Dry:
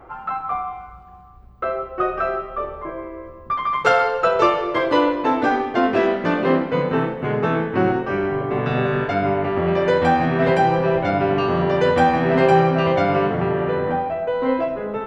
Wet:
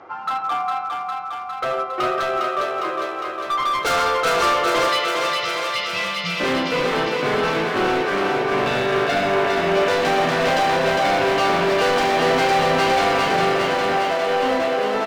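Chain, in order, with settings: steep low-pass 5.8 kHz; tilt EQ +1.5 dB/octave; spectral selection erased 4.88–6.40 s, 210–1900 Hz; high-pass 150 Hz 12 dB/octave; tone controls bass -1 dB, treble +10 dB; delay 111 ms -13 dB; overload inside the chain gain 21 dB; thinning echo 406 ms, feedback 75%, high-pass 300 Hz, level -3 dB; trim +2.5 dB

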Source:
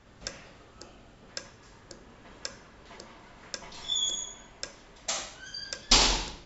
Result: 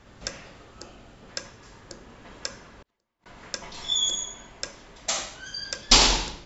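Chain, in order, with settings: 2.71–3.26 s: inverted gate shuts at -42 dBFS, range -37 dB; trim +4.5 dB

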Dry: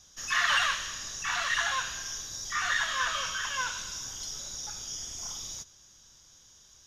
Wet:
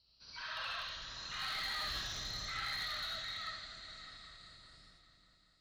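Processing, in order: gliding tape speed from 74% -> 171%; Doppler pass-by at 1.89 s, 29 m/s, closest 2.2 m; high-pass 54 Hz 12 dB/octave; tilt EQ -2.5 dB/octave; compression 2.5:1, threshold -52 dBFS, peak gain reduction 13 dB; peak limiter -45 dBFS, peak gain reduction 7.5 dB; resonant low-pass 4.2 kHz, resonance Q 8.7; delay with an opening low-pass 199 ms, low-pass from 200 Hz, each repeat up 2 oct, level -6 dB; reverberation RT60 0.35 s, pre-delay 30 ms, DRR -1.5 dB; slew-rate limiter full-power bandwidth 23 Hz; trim +7 dB

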